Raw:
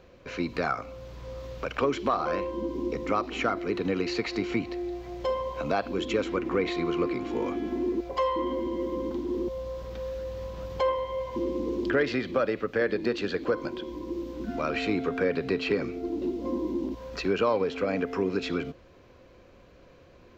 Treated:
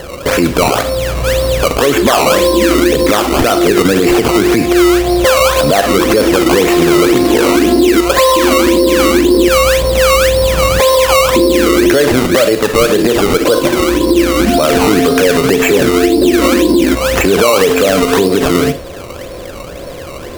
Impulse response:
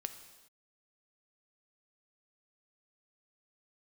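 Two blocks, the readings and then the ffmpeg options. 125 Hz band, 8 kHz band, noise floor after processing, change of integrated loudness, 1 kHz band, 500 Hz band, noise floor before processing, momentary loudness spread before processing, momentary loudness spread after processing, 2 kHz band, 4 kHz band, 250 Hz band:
+20.0 dB, no reading, -26 dBFS, +20.0 dB, +18.5 dB, +19.5 dB, -54 dBFS, 9 LU, 5 LU, +19.5 dB, +24.5 dB, +19.5 dB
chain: -filter_complex "[0:a]equalizer=f=590:w=2.1:g=6.5,asplit=2[s0][s1];[s1]acompressor=threshold=0.0224:ratio=6,volume=1[s2];[s0][s2]amix=inputs=2:normalize=0,acrusher=samples=18:mix=1:aa=0.000001:lfo=1:lforange=18:lforate=1.9[s3];[1:a]atrim=start_sample=2205,atrim=end_sample=3528,asetrate=41895,aresample=44100[s4];[s3][s4]afir=irnorm=-1:irlink=0,alimiter=level_in=12.6:limit=0.891:release=50:level=0:latency=1,volume=0.891"

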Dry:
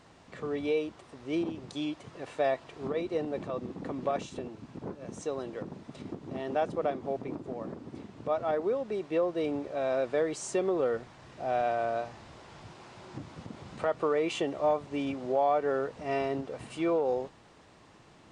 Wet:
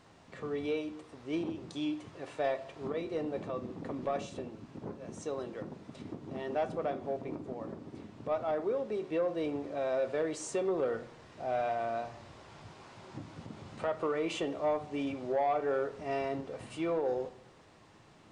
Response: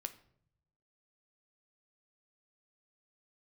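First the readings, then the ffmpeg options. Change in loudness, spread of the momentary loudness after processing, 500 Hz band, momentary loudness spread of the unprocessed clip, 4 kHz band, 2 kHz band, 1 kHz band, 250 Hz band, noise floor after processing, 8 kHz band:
-3.5 dB, 15 LU, -3.5 dB, 16 LU, -3.0 dB, -3.0 dB, -3.5 dB, -2.5 dB, -58 dBFS, -2.5 dB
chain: -filter_complex "[1:a]atrim=start_sample=2205[s0];[0:a][s0]afir=irnorm=-1:irlink=0,asoftclip=type=tanh:threshold=0.0794"

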